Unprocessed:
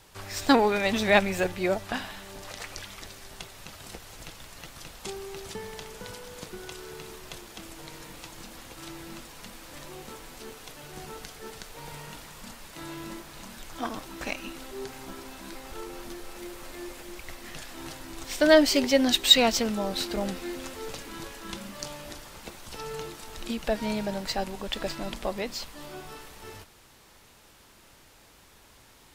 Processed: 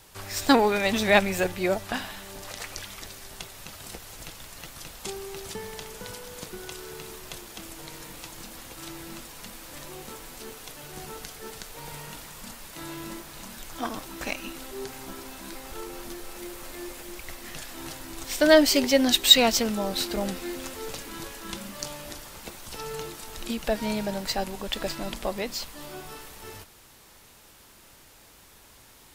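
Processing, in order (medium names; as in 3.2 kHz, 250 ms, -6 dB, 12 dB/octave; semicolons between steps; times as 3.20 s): treble shelf 8.7 kHz +7.5 dB; trim +1 dB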